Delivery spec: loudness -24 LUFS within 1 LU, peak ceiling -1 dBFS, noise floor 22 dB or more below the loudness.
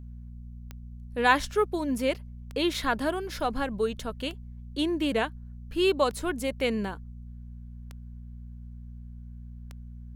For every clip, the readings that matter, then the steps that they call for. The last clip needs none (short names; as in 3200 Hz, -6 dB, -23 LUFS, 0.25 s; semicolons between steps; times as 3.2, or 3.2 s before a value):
clicks 6; hum 60 Hz; harmonics up to 240 Hz; hum level -40 dBFS; loudness -28.5 LUFS; peak -6.5 dBFS; loudness target -24.0 LUFS
-> de-click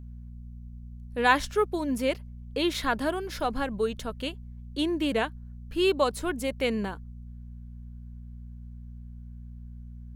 clicks 0; hum 60 Hz; harmonics up to 240 Hz; hum level -40 dBFS
-> de-hum 60 Hz, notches 4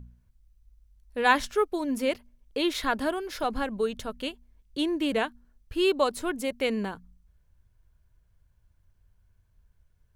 hum none; loudness -28.5 LUFS; peak -6.5 dBFS; loudness target -24.0 LUFS
-> gain +4.5 dB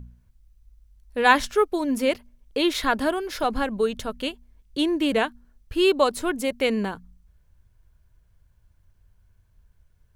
loudness -24.0 LUFS; peak -2.0 dBFS; noise floor -62 dBFS